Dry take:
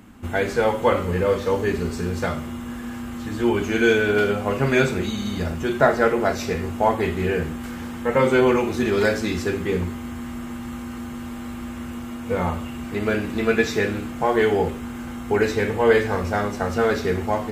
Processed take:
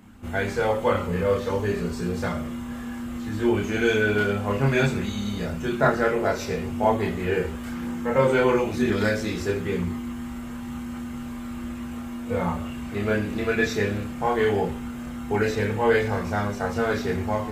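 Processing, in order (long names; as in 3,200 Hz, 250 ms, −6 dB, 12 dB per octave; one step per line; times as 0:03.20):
multi-voice chorus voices 4, 0.49 Hz, delay 29 ms, depth 1.1 ms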